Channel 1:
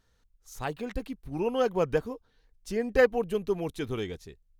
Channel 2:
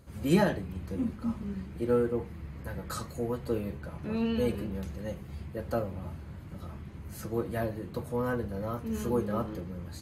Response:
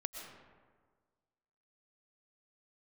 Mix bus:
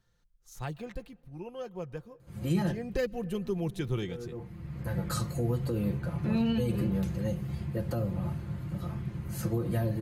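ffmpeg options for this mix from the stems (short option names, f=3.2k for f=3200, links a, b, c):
-filter_complex "[0:a]volume=6dB,afade=t=out:st=0.8:d=0.49:silence=0.354813,afade=t=in:st=2.68:d=0.27:silence=0.251189,asplit=3[a][b][c];[b]volume=-19.5dB[d];[1:a]alimiter=limit=-23.5dB:level=0:latency=1:release=66,adelay=2200,volume=2.5dB[e];[c]apad=whole_len=538695[f];[e][f]sidechaincompress=threshold=-47dB:ratio=10:attack=5.8:release=763[g];[2:a]atrim=start_sample=2205[h];[d][h]afir=irnorm=-1:irlink=0[i];[a][g][i]amix=inputs=3:normalize=0,equalizer=f=120:w=1.8:g=10,aecho=1:1:5.7:0.46,acrossover=split=350|3000[j][k][l];[k]acompressor=threshold=-36dB:ratio=6[m];[j][m][l]amix=inputs=3:normalize=0"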